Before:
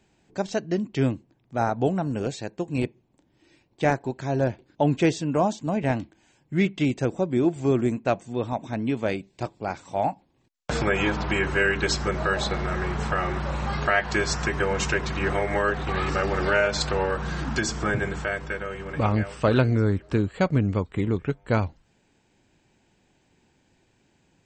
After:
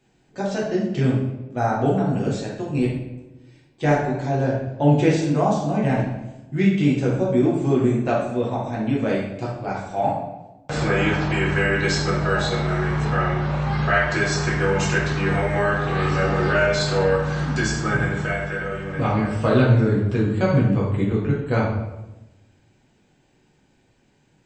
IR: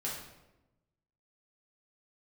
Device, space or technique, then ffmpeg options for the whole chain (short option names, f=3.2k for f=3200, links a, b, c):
bathroom: -filter_complex "[1:a]atrim=start_sample=2205[a];[0:a][a]afir=irnorm=-1:irlink=0,asettb=1/sr,asplit=3[b][c][d];[b]atrim=end=13.054[e];[c]atrim=start=13.05:end=13.94,asetpts=PTS-STARTPTS,afade=t=in:d=0.004:c=qsin,afade=t=out:st=0.886:d=0.004:c=qsin,lowpass=5.5k[f];[d]atrim=start=13.936[g];[e][f]acrossfade=d=0.004:c1=hsin:c2=qsin[h];[h][g]acrossfade=d=0.004:c1=qsin:c2=hsin"